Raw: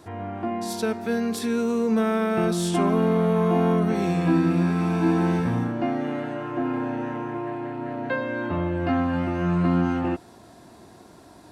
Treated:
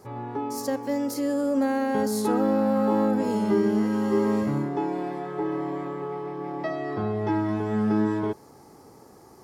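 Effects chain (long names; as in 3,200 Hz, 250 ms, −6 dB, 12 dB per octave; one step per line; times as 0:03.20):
drawn EQ curve 640 Hz 0 dB, 2,500 Hz −10 dB, 4,200 Hz 0 dB
speed change +22%
level −1.5 dB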